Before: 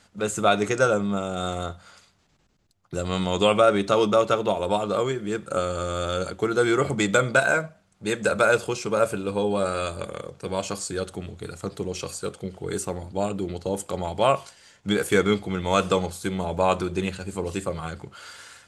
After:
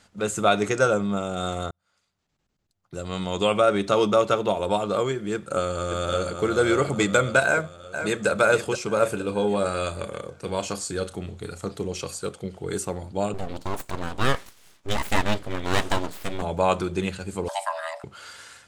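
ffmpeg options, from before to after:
ffmpeg -i in.wav -filter_complex "[0:a]asplit=2[link_01][link_02];[link_02]afade=type=in:start_time=5.34:duration=0.01,afade=type=out:start_time=6.46:duration=0.01,aecho=0:1:570|1140|1710|2280|2850|3420:0.501187|0.250594|0.125297|0.0626484|0.0313242|0.0156621[link_03];[link_01][link_03]amix=inputs=2:normalize=0,asplit=2[link_04][link_05];[link_05]afade=type=in:start_time=7.46:duration=0.01,afade=type=out:start_time=8.28:duration=0.01,aecho=0:1:470|940|1410|1880|2350|2820:0.375837|0.187919|0.0939594|0.0469797|0.0234898|0.0117449[link_06];[link_04][link_06]amix=inputs=2:normalize=0,asettb=1/sr,asplit=3[link_07][link_08][link_09];[link_07]atrim=end=8.984[link_10];[link_08]atrim=start=8.98:end=11.94,asetpts=PTS-STARTPTS,afade=type=in:duration=0.004:curve=qsin,afade=type=out:start_time=2.956:duration=0.004:curve=qsin,asplit=2[link_11][link_12];[link_12]adelay=34,volume=-12dB[link_13];[link_11][link_13]amix=inputs=2:normalize=0,atrim=end_sample=130536[link_14];[link_09]atrim=start=11.936[link_15];[link_10][link_14]acrossfade=duration=0.004:curve1=hsin:curve2=qsin[link_16];[link_16][link_15]acrossfade=duration=0.004:curve1=qsin:curve2=hsin,asettb=1/sr,asplit=3[link_17][link_18][link_19];[link_17]atrim=end=13.344[link_20];[link_18]atrim=start=13.34:end=16.42,asetpts=PTS-STARTPTS,afade=type=in:duration=0.004:curve=qsin,afade=type=out:start_time=3.076:duration=0.004:curve=qsin,aeval=exprs='abs(val(0))':channel_layout=same[link_21];[link_19]atrim=start=16.416[link_22];[link_20][link_21]acrossfade=duration=0.004:curve1=hsin:curve2=qsin[link_23];[link_23][link_22]acrossfade=duration=0.004:curve1=qsin:curve2=hsin,asettb=1/sr,asplit=3[link_24][link_25][link_26];[link_24]atrim=end=17.484[link_27];[link_25]atrim=start=17.48:end=18.04,asetpts=PTS-STARTPTS,afade=type=in:duration=0.004:curve=qsin,afade=type=out:start_time=0.556:duration=0.004:curve=qsin,afreqshift=490[link_28];[link_26]atrim=start=18.036[link_29];[link_27][link_28]acrossfade=duration=0.004:curve1=hsin:curve2=qsin[link_30];[link_30][link_29]acrossfade=duration=0.004:curve1=qsin:curve2=hsin,asplit=2[link_31][link_32];[link_31]atrim=end=1.71,asetpts=PTS-STARTPTS,afade=type=out:start_time=1.706:duration=0.004:curve=hsin[link_33];[link_32]atrim=start=1.71,asetpts=PTS-STARTPTS,afade=type=in:duration=2.33[link_34];[link_33][link_34]concat=n=2:v=0:a=1" out.wav

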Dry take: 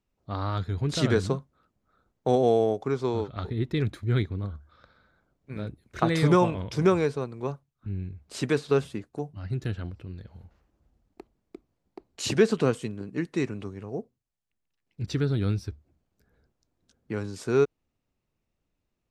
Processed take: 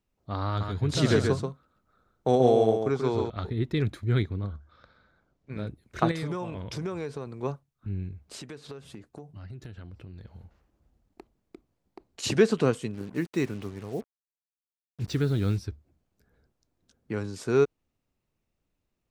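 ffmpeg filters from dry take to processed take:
ffmpeg -i in.wav -filter_complex "[0:a]asettb=1/sr,asplit=3[link_01][link_02][link_03];[link_01]atrim=end=0.474[link_04];[link_02]atrim=start=0.47:end=3.3,asetpts=PTS-STARTPTS,afade=type=in:duration=0.004:curve=qsin,afade=type=out:start_time=2.826:duration=0.004:curve=qsin,aecho=1:1:134:0.562,atrim=end_sample=124803[link_05];[link_03]atrim=start=3.296[link_06];[link_04][link_05]acrossfade=duration=0.004:curve1=hsin:curve2=qsin[link_07];[link_07][link_06]acrossfade=duration=0.004:curve1=qsin:curve2=hsin,asettb=1/sr,asplit=3[link_08][link_09][link_10];[link_08]atrim=end=4.394[link_11];[link_09]atrim=start=4.39:end=5.58,asetpts=PTS-STARTPTS,afade=type=in:duration=0.004:curve=qsin,afade=type=out:start_time=1.186:duration=0.004:curve=qsin,lowpass=frequency=7400:width=0.5412,lowpass=frequency=7400:width=1.3066[link_12];[link_10]atrim=start=5.576[link_13];[link_11][link_12]acrossfade=duration=0.004:curve1=hsin:curve2=qsin[link_14];[link_14][link_13]acrossfade=duration=0.004:curve1=qsin:curve2=hsin,asettb=1/sr,asplit=3[link_15][link_16][link_17];[link_15]atrim=end=6.114[link_18];[link_16]atrim=start=6.11:end=7.27,asetpts=PTS-STARTPTS,afade=type=in:duration=0.004:curve=qsin,afade=type=out:start_time=1.156:duration=0.004:curve=qsin,acompressor=threshold=-31dB:ratio=4:attack=3.2:release=140:knee=1:detection=peak[link_19];[link_17]atrim=start=7.266[link_20];[link_18][link_19]acrossfade=duration=0.004:curve1=hsin:curve2=qsin[link_21];[link_21][link_20]acrossfade=duration=0.004:curve1=qsin:curve2=hsin,asplit=3[link_22][link_23][link_24];[link_22]afade=type=out:start_time=8.25:duration=0.02[link_25];[link_23]acompressor=threshold=-38dB:ratio=10:attack=3.2:release=140:knee=1:detection=peak,afade=type=in:start_time=8.25:duration=0.02,afade=type=out:start_time=12.22:duration=0.02[link_26];[link_24]afade=type=in:start_time=12.22:duration=0.02[link_27];[link_25][link_26][link_27]amix=inputs=3:normalize=0,asplit=3[link_28][link_29][link_30];[link_28]afade=type=out:start_time=12.93:duration=0.02[link_31];[link_29]acrusher=bits=7:mix=0:aa=0.5,afade=type=in:start_time=12.93:duration=0.02,afade=type=out:start_time=15.57:duration=0.02[link_32];[link_30]afade=type=in:start_time=15.57:duration=0.02[link_33];[link_31][link_32][link_33]amix=inputs=3:normalize=0" out.wav

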